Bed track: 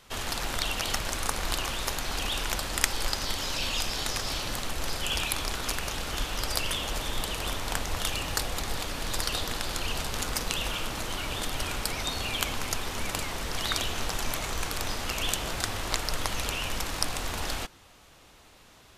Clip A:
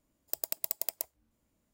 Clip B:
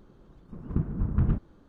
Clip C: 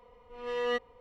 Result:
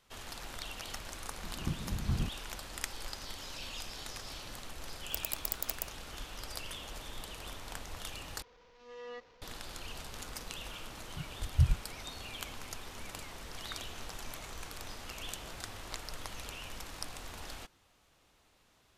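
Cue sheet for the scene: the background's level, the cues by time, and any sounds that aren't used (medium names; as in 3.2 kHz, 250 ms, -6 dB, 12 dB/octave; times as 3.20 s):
bed track -13 dB
0.91 s: add B -8.5 dB
4.81 s: add A -3 dB
8.42 s: replace with C -14.5 dB + one-bit delta coder 32 kbps, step -41 dBFS
10.41 s: add B -3 dB + spectral contrast expander 4:1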